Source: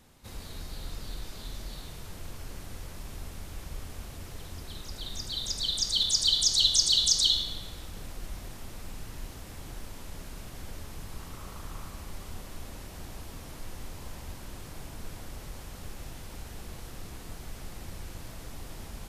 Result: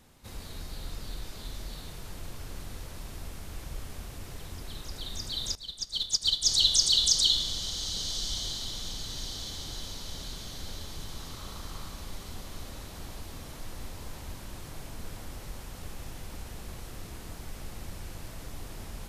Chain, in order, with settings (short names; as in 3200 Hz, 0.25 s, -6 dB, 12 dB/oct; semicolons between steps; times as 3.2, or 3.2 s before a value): diffused feedback echo 1.222 s, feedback 52%, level -11 dB; 5.55–6.45 upward expander 2.5:1, over -34 dBFS